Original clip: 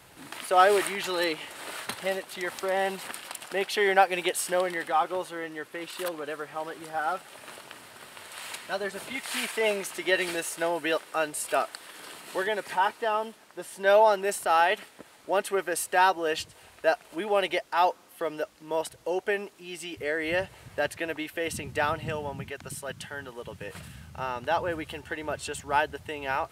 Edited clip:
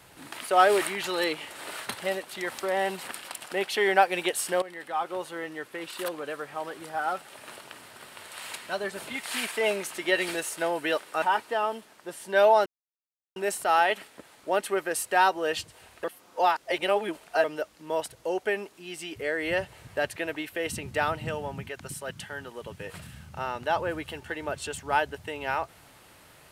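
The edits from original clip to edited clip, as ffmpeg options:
ffmpeg -i in.wav -filter_complex "[0:a]asplit=6[link_01][link_02][link_03][link_04][link_05][link_06];[link_01]atrim=end=4.62,asetpts=PTS-STARTPTS,afade=type=out:start_time=4.616:duration=0.004:curve=hsin:silence=0.188365[link_07];[link_02]atrim=start=4.62:end=11.222,asetpts=PTS-STARTPTS,afade=type=in:duration=0.74:silence=0.188365[link_08];[link_03]atrim=start=12.728:end=14.17,asetpts=PTS-STARTPTS,afade=type=out:start_time=1.438:duration=0.004:curve=hsin,apad=pad_dur=0.7[link_09];[link_04]atrim=start=14.17:end=16.852,asetpts=PTS-STARTPTS,afade=type=in:duration=0.004:curve=hsin[link_10];[link_05]atrim=start=16.848:end=18.252,asetpts=PTS-STARTPTS,areverse[link_11];[link_06]atrim=start=18.248[link_12];[link_07][link_08]concat=n=2:v=0:a=1[link_13];[link_09][link_10]concat=n=2:v=0:a=1[link_14];[link_13][link_14]acrossfade=duration=0.004:curve1=hsin:curve2=hsin[link_15];[link_15][link_11]acrossfade=duration=0.004:curve1=hsin:curve2=hsin[link_16];[link_16][link_12]acrossfade=duration=0.004:curve1=hsin:curve2=hsin" out.wav

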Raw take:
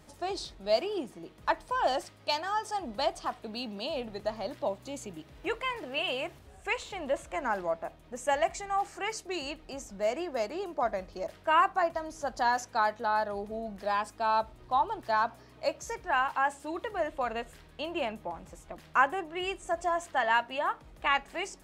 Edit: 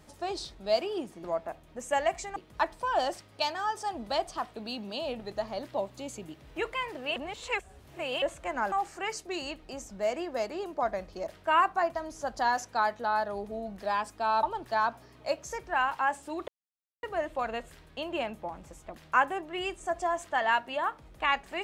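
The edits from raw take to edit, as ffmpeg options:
ffmpeg -i in.wav -filter_complex "[0:a]asplit=8[link_01][link_02][link_03][link_04][link_05][link_06][link_07][link_08];[link_01]atrim=end=1.242[link_09];[link_02]atrim=start=7.598:end=8.722[link_10];[link_03]atrim=start=1.238:end=6.042[link_11];[link_04]atrim=start=6.038:end=7.102,asetpts=PTS-STARTPTS,areverse[link_12];[link_05]atrim=start=7.098:end=7.602[link_13];[link_06]atrim=start=8.718:end=14.432[link_14];[link_07]atrim=start=14.798:end=16.85,asetpts=PTS-STARTPTS,afade=type=out:start_time=2.048:duration=0.004:curve=hsin,apad=pad_dur=0.55[link_15];[link_08]atrim=start=16.85,asetpts=PTS-STARTPTS,afade=type=in:duration=0.004:curve=hsin[link_16];[link_09][link_10]acrossfade=duration=0.004:curve1=hsin:curve2=hsin[link_17];[link_17][link_11]acrossfade=duration=0.004:curve1=hsin:curve2=hsin[link_18];[link_18][link_12]acrossfade=duration=0.004:curve1=hsin:curve2=hsin[link_19];[link_19][link_13]acrossfade=duration=0.004:curve1=hsin:curve2=hsin[link_20];[link_20][link_14]acrossfade=duration=0.004:curve1=hsin:curve2=hsin[link_21];[link_15][link_16]concat=n=2:v=0:a=1[link_22];[link_21][link_22]acrossfade=duration=0.004:curve1=hsin:curve2=hsin" out.wav

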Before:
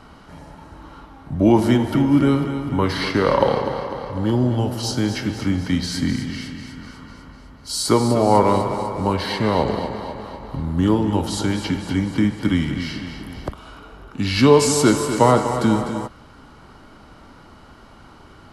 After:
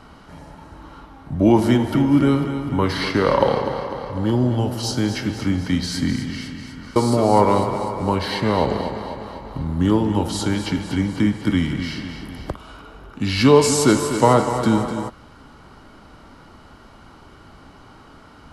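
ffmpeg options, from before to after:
ffmpeg -i in.wav -filter_complex "[0:a]asplit=2[link_01][link_02];[link_01]atrim=end=6.962[link_03];[link_02]atrim=start=7.938[link_04];[link_03][link_04]acrossfade=duration=0.004:curve1=hsin:curve2=hsin" out.wav

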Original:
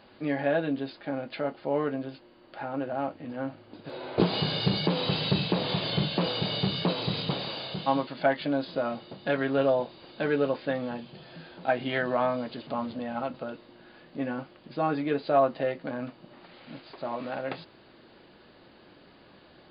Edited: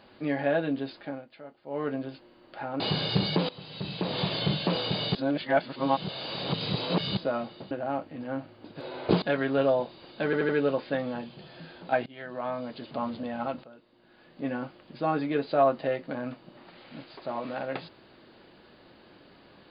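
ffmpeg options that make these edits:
ffmpeg -i in.wav -filter_complex "[0:a]asplit=14[link_01][link_02][link_03][link_04][link_05][link_06][link_07][link_08][link_09][link_10][link_11][link_12][link_13][link_14];[link_01]atrim=end=1.26,asetpts=PTS-STARTPTS,afade=type=out:start_time=1:duration=0.26:silence=0.177828[link_15];[link_02]atrim=start=1.26:end=1.65,asetpts=PTS-STARTPTS,volume=-15dB[link_16];[link_03]atrim=start=1.65:end=2.802,asetpts=PTS-STARTPTS,afade=type=in:duration=0.26:silence=0.177828[link_17];[link_04]atrim=start=4.308:end=5,asetpts=PTS-STARTPTS,afade=type=out:start_time=0.688:duration=0.004:curve=hsin:silence=0.11885[link_18];[link_05]atrim=start=5:end=6.662,asetpts=PTS-STARTPTS,afade=type=in:duration=0.71:curve=qua:silence=0.11885[link_19];[link_06]atrim=start=6.658:end=8.682,asetpts=PTS-STARTPTS,areverse[link_20];[link_07]atrim=start=8.678:end=9.222[link_21];[link_08]atrim=start=2.798:end=4.312[link_22];[link_09]atrim=start=9.218:end=10.332[link_23];[link_10]atrim=start=10.248:end=10.332[link_24];[link_11]atrim=start=10.248:end=10.332[link_25];[link_12]atrim=start=10.248:end=11.82,asetpts=PTS-STARTPTS,afade=type=out:start_time=1.568:duration=0.004:curve=hsin:silence=0.0707946[link_26];[link_13]atrim=start=11.82:end=13.4,asetpts=PTS-STARTPTS,afade=type=in:duration=0.96:silence=0.0707946,afade=type=out:start_time=1.576:duration=0.004:curve=hsin:silence=0.188365[link_27];[link_14]atrim=start=13.4,asetpts=PTS-STARTPTS,afade=type=in:duration=0.83:curve=qua:silence=0.188365[link_28];[link_15][link_16][link_17]concat=n=3:v=0:a=1[link_29];[link_18][link_19]concat=n=2:v=0:a=1[link_30];[link_29][link_30]acrossfade=duration=0.004:curve1=hsin:curve2=hsin[link_31];[link_31][link_20]acrossfade=duration=0.004:curve1=hsin:curve2=hsin[link_32];[link_32][link_21]acrossfade=duration=0.004:curve1=hsin:curve2=hsin[link_33];[link_33][link_22]acrossfade=duration=0.004:curve1=hsin:curve2=hsin[link_34];[link_34][link_23]acrossfade=duration=0.004:curve1=hsin:curve2=hsin[link_35];[link_35][link_24]acrossfade=duration=0.004:curve1=hsin:curve2=hsin[link_36];[link_36][link_25]acrossfade=duration=0.004:curve1=hsin:curve2=hsin[link_37];[link_26][link_27][link_28]concat=n=3:v=0:a=1[link_38];[link_37][link_38]acrossfade=duration=0.004:curve1=hsin:curve2=hsin" out.wav

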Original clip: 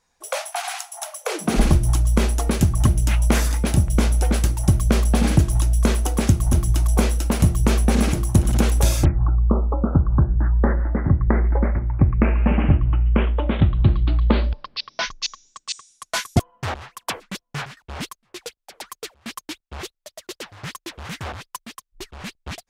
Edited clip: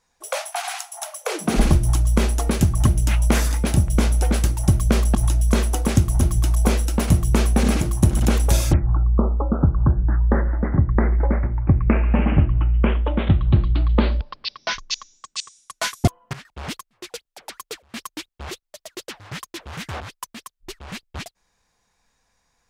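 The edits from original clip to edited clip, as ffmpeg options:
ffmpeg -i in.wav -filter_complex "[0:a]asplit=3[link_01][link_02][link_03];[link_01]atrim=end=5.152[link_04];[link_02]atrim=start=5.468:end=16.652[link_05];[link_03]atrim=start=17.648[link_06];[link_04][link_05]acrossfade=duration=0.004:curve1=hsin:curve2=hsin[link_07];[link_07][link_06]acrossfade=duration=0.004:curve1=hsin:curve2=hsin" out.wav

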